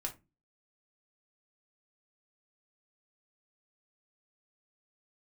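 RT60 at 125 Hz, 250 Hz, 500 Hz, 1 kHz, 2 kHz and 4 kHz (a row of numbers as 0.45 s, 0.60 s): 0.45 s, 0.45 s, 0.30 s, 0.20 s, 0.20 s, 0.15 s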